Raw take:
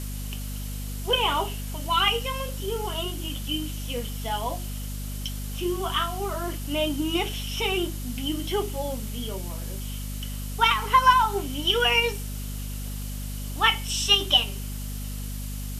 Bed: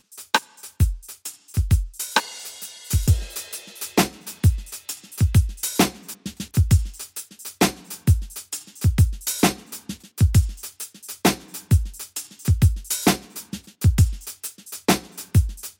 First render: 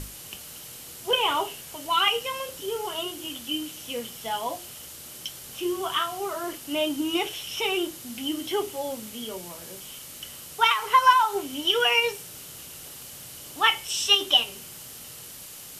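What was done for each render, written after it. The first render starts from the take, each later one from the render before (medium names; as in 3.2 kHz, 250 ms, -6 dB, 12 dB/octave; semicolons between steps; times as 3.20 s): hum notches 50/100/150/200/250 Hz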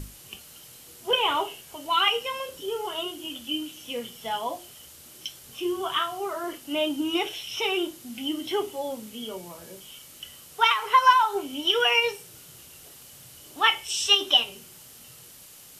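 noise print and reduce 6 dB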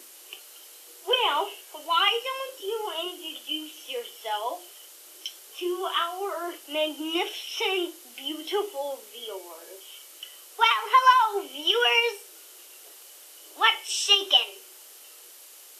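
steep high-pass 330 Hz 48 dB/octave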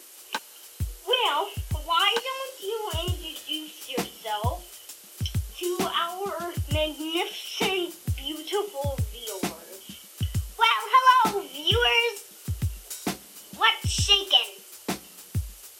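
add bed -12 dB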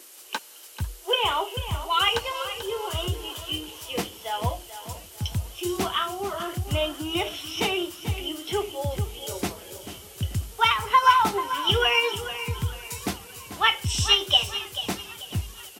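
feedback delay 439 ms, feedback 34%, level -12 dB; modulated delay 491 ms, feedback 74%, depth 167 cents, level -22.5 dB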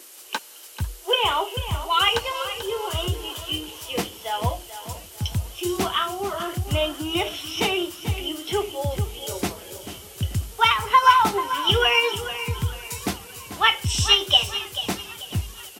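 trim +2.5 dB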